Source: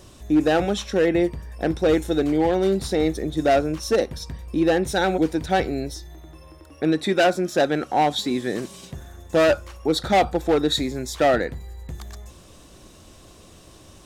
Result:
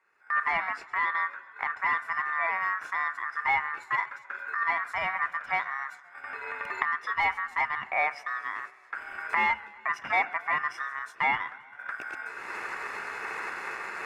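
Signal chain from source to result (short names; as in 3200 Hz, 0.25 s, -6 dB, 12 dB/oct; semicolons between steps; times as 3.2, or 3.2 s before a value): octaver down 2 oct, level -2 dB; recorder AGC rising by 30 dB/s; polynomial smoothing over 65 samples; tilt +2.5 dB/oct; gate -35 dBFS, range -14 dB; ring modulator 1500 Hz; low shelf 92 Hz -5.5 dB; warbling echo 0.132 s, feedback 67%, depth 85 cents, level -22 dB; gain -3 dB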